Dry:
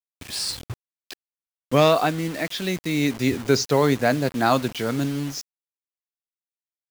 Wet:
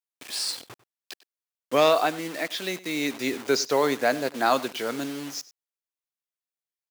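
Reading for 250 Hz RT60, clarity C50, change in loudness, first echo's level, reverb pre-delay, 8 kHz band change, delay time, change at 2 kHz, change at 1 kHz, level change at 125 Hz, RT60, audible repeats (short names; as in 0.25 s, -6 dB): none, none, -3.0 dB, -19.0 dB, none, -1.5 dB, 97 ms, -1.5 dB, -1.5 dB, -17.0 dB, none, 1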